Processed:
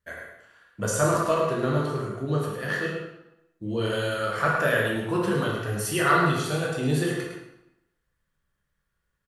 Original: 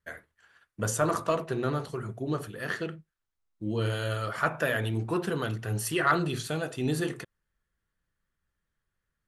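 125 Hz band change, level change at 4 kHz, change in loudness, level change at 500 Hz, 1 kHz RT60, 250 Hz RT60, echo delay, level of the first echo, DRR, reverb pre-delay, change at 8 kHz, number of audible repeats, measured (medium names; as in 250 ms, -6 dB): +3.5 dB, +4.5 dB, +4.5 dB, +5.5 dB, 0.95 s, 0.90 s, 106 ms, -6.0 dB, -3.0 dB, 12 ms, +4.0 dB, 1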